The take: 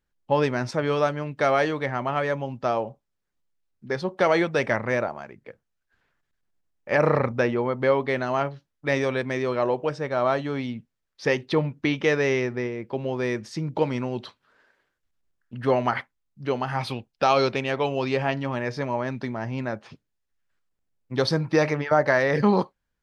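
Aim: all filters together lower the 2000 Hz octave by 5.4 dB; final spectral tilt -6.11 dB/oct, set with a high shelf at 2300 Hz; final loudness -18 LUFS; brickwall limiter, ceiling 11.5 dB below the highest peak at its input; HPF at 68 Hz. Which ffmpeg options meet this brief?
-af "highpass=68,equalizer=f=2k:t=o:g=-3.5,highshelf=f=2.3k:g=-6.5,volume=13dB,alimiter=limit=-6.5dB:level=0:latency=1"

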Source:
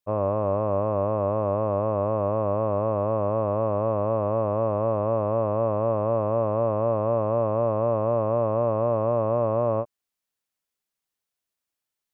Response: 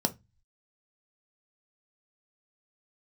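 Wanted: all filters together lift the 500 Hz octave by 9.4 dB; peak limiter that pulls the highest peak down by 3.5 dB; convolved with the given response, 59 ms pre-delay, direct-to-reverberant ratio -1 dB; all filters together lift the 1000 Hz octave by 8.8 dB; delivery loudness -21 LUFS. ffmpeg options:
-filter_complex "[0:a]equalizer=f=500:t=o:g=8.5,equalizer=f=1k:t=o:g=8,alimiter=limit=-9dB:level=0:latency=1,asplit=2[a][b];[1:a]atrim=start_sample=2205,adelay=59[c];[b][c]afir=irnorm=-1:irlink=0,volume=-6dB[d];[a][d]amix=inputs=2:normalize=0,volume=-9.5dB"

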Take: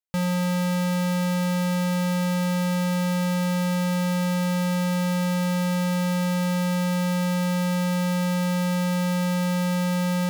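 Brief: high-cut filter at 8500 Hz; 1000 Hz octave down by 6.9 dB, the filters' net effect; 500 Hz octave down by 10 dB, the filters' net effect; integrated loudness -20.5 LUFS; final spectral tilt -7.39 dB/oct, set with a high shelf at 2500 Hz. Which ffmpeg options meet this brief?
-af "lowpass=8.5k,equalizer=f=500:t=o:g=-9,equalizer=f=1k:t=o:g=-4.5,highshelf=f=2.5k:g=-8.5,volume=5.5dB"

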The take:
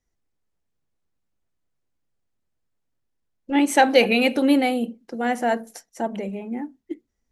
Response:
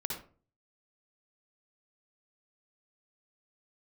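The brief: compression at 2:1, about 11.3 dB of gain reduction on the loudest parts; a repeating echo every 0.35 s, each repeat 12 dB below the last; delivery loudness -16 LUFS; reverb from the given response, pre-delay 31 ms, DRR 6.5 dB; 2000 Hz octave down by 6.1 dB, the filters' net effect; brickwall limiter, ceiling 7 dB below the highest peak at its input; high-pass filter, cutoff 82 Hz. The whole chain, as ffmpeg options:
-filter_complex "[0:a]highpass=82,equalizer=f=2k:t=o:g=-8,acompressor=threshold=-33dB:ratio=2,alimiter=limit=-23.5dB:level=0:latency=1,aecho=1:1:350|700|1050:0.251|0.0628|0.0157,asplit=2[a][b];[1:a]atrim=start_sample=2205,adelay=31[c];[b][c]afir=irnorm=-1:irlink=0,volume=-8.5dB[d];[a][d]amix=inputs=2:normalize=0,volume=16.5dB"

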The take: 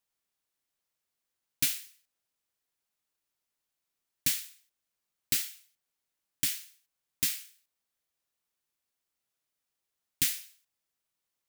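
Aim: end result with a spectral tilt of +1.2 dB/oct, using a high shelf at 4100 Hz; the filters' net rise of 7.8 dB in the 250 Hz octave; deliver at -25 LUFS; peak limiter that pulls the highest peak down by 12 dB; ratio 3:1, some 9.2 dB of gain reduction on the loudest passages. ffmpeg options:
-af "equalizer=f=250:t=o:g=9,highshelf=f=4.1k:g=6.5,acompressor=threshold=-30dB:ratio=3,volume=12.5dB,alimiter=limit=-7.5dB:level=0:latency=1"

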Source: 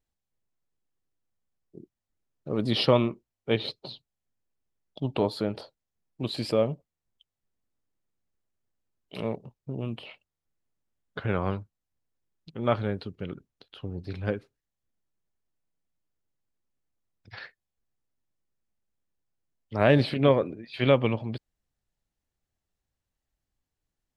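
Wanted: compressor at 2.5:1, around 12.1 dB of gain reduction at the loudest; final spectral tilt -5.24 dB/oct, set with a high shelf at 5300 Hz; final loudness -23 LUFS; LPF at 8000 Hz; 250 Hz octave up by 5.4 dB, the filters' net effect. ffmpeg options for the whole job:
-af "lowpass=8k,equalizer=f=250:t=o:g=6.5,highshelf=f=5.3k:g=8,acompressor=threshold=-31dB:ratio=2.5,volume=12dB"

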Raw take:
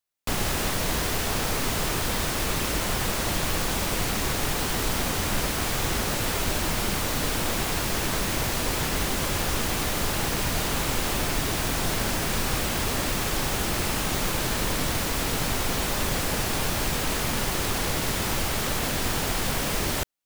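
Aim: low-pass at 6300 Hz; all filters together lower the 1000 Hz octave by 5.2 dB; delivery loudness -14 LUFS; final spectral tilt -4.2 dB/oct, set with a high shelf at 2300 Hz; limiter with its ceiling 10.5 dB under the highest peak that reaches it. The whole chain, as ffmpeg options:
-af "lowpass=6.3k,equalizer=f=1k:t=o:g=-6,highshelf=f=2.3k:g=-4,volume=21dB,alimiter=limit=-4.5dB:level=0:latency=1"

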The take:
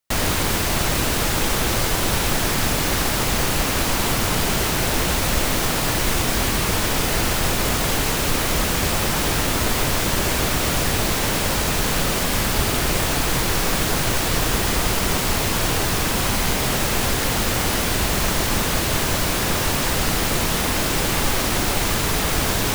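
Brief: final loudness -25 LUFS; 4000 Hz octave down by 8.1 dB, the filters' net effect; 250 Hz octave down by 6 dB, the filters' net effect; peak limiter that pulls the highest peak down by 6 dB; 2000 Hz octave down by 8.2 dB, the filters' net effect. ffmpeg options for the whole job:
-af "equalizer=f=250:t=o:g=-8.5,equalizer=f=2k:t=o:g=-8.5,equalizer=f=4k:t=o:g=-8,volume=-0.5dB,alimiter=limit=-15dB:level=0:latency=1"

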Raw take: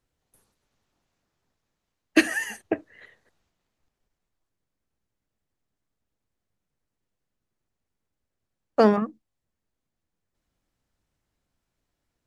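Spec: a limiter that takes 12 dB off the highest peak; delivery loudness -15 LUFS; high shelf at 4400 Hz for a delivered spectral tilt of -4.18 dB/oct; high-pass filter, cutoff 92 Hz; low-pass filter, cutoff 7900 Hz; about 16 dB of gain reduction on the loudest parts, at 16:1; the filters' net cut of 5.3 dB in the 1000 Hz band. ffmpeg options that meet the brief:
-af "highpass=92,lowpass=7.9k,equalizer=f=1k:t=o:g=-7.5,highshelf=f=4.4k:g=-4,acompressor=threshold=-29dB:ratio=16,volume=26dB,alimiter=limit=-1dB:level=0:latency=1"

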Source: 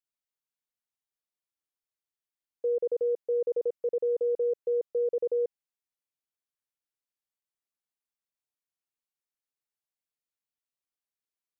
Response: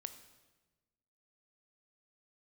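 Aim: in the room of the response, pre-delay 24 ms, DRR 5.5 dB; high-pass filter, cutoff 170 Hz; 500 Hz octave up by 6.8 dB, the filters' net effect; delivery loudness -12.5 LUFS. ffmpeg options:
-filter_complex "[0:a]highpass=170,equalizer=f=500:t=o:g=7,asplit=2[a][b];[1:a]atrim=start_sample=2205,adelay=24[c];[b][c]afir=irnorm=-1:irlink=0,volume=-2dB[d];[a][d]amix=inputs=2:normalize=0,volume=13.5dB"

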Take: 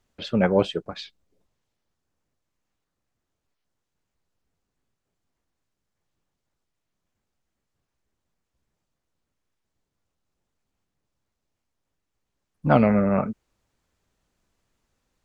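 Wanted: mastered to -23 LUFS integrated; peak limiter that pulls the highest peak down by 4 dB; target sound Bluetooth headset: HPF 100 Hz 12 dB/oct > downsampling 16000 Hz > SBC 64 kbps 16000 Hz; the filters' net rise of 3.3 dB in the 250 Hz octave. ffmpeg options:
-af "equalizer=f=250:t=o:g=4.5,alimiter=limit=-6dB:level=0:latency=1,highpass=100,aresample=16000,aresample=44100,volume=-2dB" -ar 16000 -c:a sbc -b:a 64k

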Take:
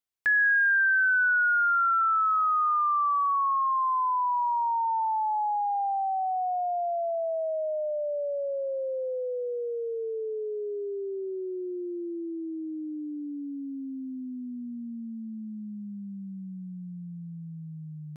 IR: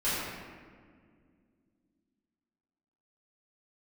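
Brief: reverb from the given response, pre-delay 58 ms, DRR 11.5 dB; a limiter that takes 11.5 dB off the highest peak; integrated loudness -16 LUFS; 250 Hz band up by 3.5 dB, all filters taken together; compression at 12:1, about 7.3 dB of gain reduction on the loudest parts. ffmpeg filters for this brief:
-filter_complex "[0:a]equalizer=f=250:t=o:g=4.5,acompressor=threshold=-29dB:ratio=12,alimiter=level_in=6dB:limit=-24dB:level=0:latency=1,volume=-6dB,asplit=2[a][b];[1:a]atrim=start_sample=2205,adelay=58[c];[b][c]afir=irnorm=-1:irlink=0,volume=-22dB[d];[a][d]amix=inputs=2:normalize=0,volume=17.5dB"

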